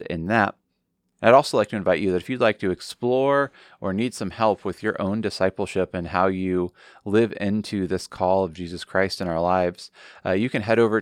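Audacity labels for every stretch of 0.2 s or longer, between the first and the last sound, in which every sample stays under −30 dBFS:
0.500000	1.230000	silence
3.470000	3.830000	silence
6.670000	7.070000	silence
9.850000	10.250000	silence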